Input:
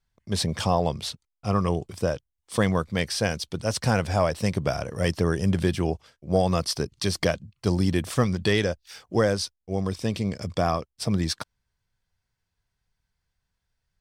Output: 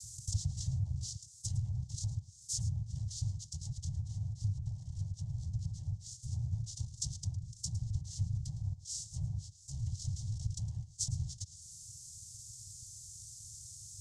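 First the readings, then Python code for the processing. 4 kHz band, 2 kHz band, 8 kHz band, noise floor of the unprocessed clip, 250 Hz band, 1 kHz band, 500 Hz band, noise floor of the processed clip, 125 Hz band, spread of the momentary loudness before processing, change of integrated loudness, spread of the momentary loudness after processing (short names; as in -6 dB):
-15.5 dB, under -40 dB, -4.0 dB, -82 dBFS, -24.0 dB, under -40 dB, under -40 dB, -57 dBFS, -8.0 dB, 6 LU, -13.5 dB, 11 LU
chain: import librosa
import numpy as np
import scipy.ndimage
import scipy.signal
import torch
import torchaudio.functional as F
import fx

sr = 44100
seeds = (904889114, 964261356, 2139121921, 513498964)

p1 = fx.bin_compress(x, sr, power=0.4)
p2 = fx.noise_vocoder(p1, sr, seeds[0], bands=4)
p3 = fx.env_lowpass_down(p2, sr, base_hz=900.0, full_db=-14.0)
p4 = fx.rider(p3, sr, range_db=10, speed_s=2.0)
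p5 = scipy.signal.sosfilt(scipy.signal.cheby2(4, 50, [230.0, 2600.0], 'bandstop', fs=sr, output='sos'), p4)
y = p5 + fx.echo_single(p5, sr, ms=109, db=-16.0, dry=0)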